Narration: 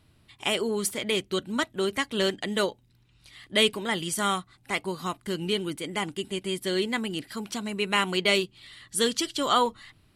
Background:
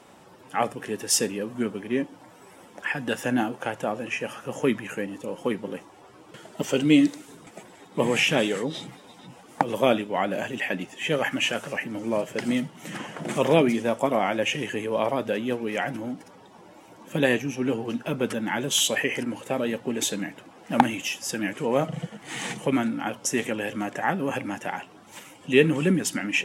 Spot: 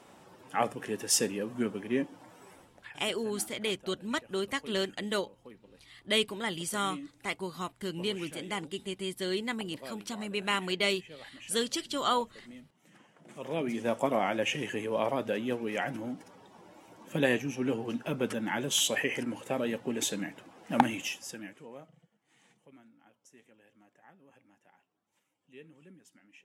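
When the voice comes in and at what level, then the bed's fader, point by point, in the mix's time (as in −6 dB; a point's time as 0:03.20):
2.55 s, −5.5 dB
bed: 0:02.52 −4 dB
0:02.98 −24.5 dB
0:13.22 −24.5 dB
0:13.89 −5 dB
0:21.05 −5 dB
0:22.08 −33.5 dB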